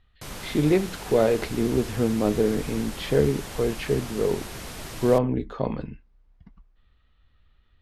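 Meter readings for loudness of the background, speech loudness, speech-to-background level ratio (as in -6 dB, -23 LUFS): -37.5 LUFS, -25.0 LUFS, 12.5 dB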